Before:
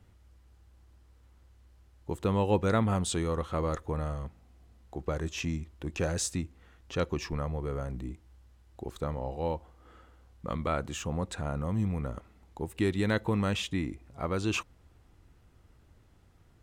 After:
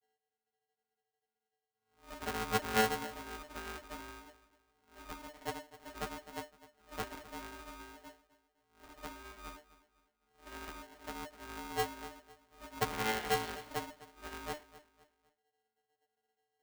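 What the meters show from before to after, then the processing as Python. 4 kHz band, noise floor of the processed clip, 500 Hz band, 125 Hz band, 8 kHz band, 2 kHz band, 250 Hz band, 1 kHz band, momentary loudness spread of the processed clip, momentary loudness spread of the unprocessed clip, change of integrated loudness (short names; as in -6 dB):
-3.0 dB, under -85 dBFS, -9.0 dB, -18.5 dB, -7.0 dB, -1.5 dB, -14.0 dB, -2.0 dB, 19 LU, 13 LU, -7.5 dB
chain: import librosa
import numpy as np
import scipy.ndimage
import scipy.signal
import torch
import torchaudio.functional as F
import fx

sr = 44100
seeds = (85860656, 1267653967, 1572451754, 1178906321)

p1 = fx.spec_swells(x, sr, rise_s=0.58)
p2 = fx.dynamic_eq(p1, sr, hz=260.0, q=7.8, threshold_db=-51.0, ratio=4.0, max_db=5)
p3 = fx.spec_paint(p2, sr, seeds[0], shape='rise', start_s=12.91, length_s=0.72, low_hz=1200.0, high_hz=4800.0, level_db=-23.0)
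p4 = fx.vocoder(p3, sr, bands=8, carrier='square', carrier_hz=163.0)
p5 = fx.wow_flutter(p4, sr, seeds[1], rate_hz=2.1, depth_cents=20.0)
p6 = fx.stiff_resonator(p5, sr, f0_hz=150.0, decay_s=0.39, stiffness=0.008)
p7 = fx.cheby_harmonics(p6, sr, harmonics=(3, 6), levels_db=(-9, -22), full_scale_db=-28.5)
p8 = fx.air_absorb(p7, sr, metres=370.0)
p9 = p8 + fx.echo_feedback(p8, sr, ms=255, feedback_pct=35, wet_db=-17.0, dry=0)
p10 = p9 * np.sign(np.sin(2.0 * np.pi * 600.0 * np.arange(len(p9)) / sr))
y = p10 * librosa.db_to_amplitude(11.5)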